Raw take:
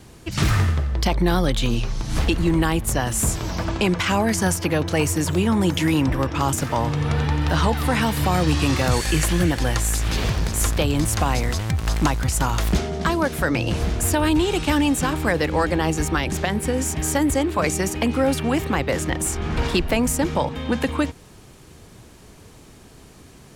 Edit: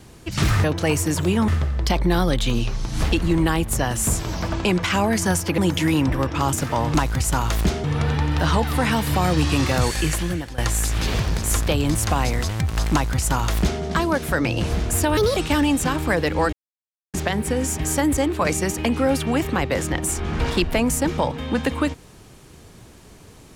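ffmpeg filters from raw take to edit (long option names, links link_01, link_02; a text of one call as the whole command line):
ffmpeg -i in.wav -filter_complex "[0:a]asplit=11[link_01][link_02][link_03][link_04][link_05][link_06][link_07][link_08][link_09][link_10][link_11];[link_01]atrim=end=0.642[link_12];[link_02]atrim=start=4.738:end=5.582[link_13];[link_03]atrim=start=0.638:end=4.742[link_14];[link_04]atrim=start=5.578:end=6.942[link_15];[link_05]atrim=start=12.018:end=12.922[link_16];[link_06]atrim=start=6.938:end=9.68,asetpts=PTS-STARTPTS,afade=type=out:start_time=1.832:duration=0.91:curve=qsin:silence=0.133352[link_17];[link_07]atrim=start=9.68:end=14.274,asetpts=PTS-STARTPTS,afade=type=in:duration=0.004:curve=hsin:silence=0.133352[link_18];[link_08]atrim=start=14.27:end=14.54,asetpts=PTS-STARTPTS,asetrate=60417,aresample=44100,atrim=end_sample=8691,asetpts=PTS-STARTPTS[link_19];[link_09]atrim=start=14.536:end=15.7,asetpts=PTS-STARTPTS,afade=type=out:start_time=1.16:duration=0.004:curve=hsin[link_20];[link_10]atrim=start=15.7:end=16.31,asetpts=PTS-STARTPTS,volume=0[link_21];[link_11]atrim=start=16.31,asetpts=PTS-STARTPTS,afade=type=in:duration=0.004:curve=hsin[link_22];[link_12][link_13]acrossfade=duration=0.004:curve1=hsin:curve2=hsin[link_23];[link_23][link_14]acrossfade=duration=0.004:curve1=hsin:curve2=hsin[link_24];[link_24][link_15]acrossfade=duration=0.004:curve1=hsin:curve2=hsin[link_25];[link_25][link_16]acrossfade=duration=0.004:curve1=hsin:curve2=hsin[link_26];[link_17][link_18]concat=n=2:v=0:a=1[link_27];[link_26][link_27]acrossfade=duration=0.004:curve1=hsin:curve2=hsin[link_28];[link_28][link_19]acrossfade=duration=0.004:curve1=hsin:curve2=hsin[link_29];[link_20][link_21][link_22]concat=n=3:v=0:a=1[link_30];[link_29][link_30]acrossfade=duration=0.004:curve1=hsin:curve2=hsin" out.wav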